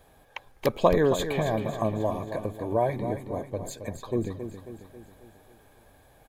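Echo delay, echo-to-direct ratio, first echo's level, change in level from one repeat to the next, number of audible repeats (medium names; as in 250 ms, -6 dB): 271 ms, -8.0 dB, -9.5 dB, -5.5 dB, 5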